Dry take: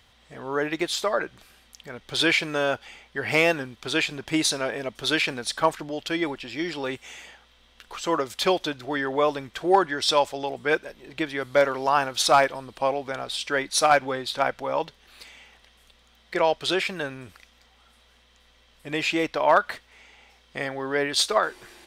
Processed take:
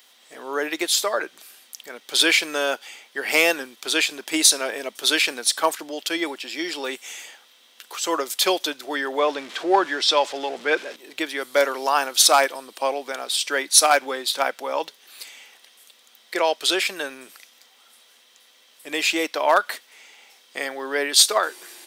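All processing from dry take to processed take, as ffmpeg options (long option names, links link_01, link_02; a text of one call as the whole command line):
ffmpeg -i in.wav -filter_complex "[0:a]asettb=1/sr,asplit=3[link_01][link_02][link_03];[link_01]atrim=end=9.194[link_04];[link_02]atrim=start=9.19:end=10.96,asetpts=PTS-STARTPTS,afade=type=in:duration=0.004:curve=qsin,afade=type=out:start_time=1.766:duration=0.004:curve=qsin,aeval=exprs='val(0)+0.5*0.0168*sgn(val(0))':channel_layout=same,lowpass=4100[link_05];[link_03]atrim=start=10.956[link_06];[link_04][link_05]acrossfade=duration=0.004:curve1=hsin:curve2=qsin[link_07];[link_07][link_06]acrossfade=duration=0.004:curve1=qsin:curve2=hsin,highpass=frequency=270:width=0.5412,highpass=frequency=270:width=1.3066,aemphasis=mode=production:type=75kf" out.wav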